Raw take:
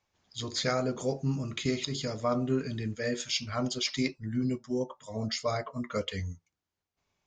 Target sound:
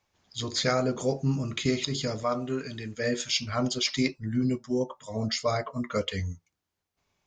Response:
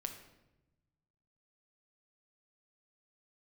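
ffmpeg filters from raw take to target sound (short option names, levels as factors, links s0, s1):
-filter_complex "[0:a]asettb=1/sr,asplit=3[s0][s1][s2];[s0]atrim=end=2.234[s3];[s1]atrim=start=2.23:end=2.97,asetpts=PTS-STARTPTS,afade=t=in:d=0.004:c=qsin,afade=t=out:st=0.736:d=0.004:c=qsin,lowshelf=f=420:g=-9[s4];[s2]atrim=start=2.966[s5];[s3][s4]acrossfade=d=0.004:c1=hsin:c2=qsin[s6];[s6][s5]acrossfade=d=0.004:c1=qsin:c2=hsin,volume=1.5"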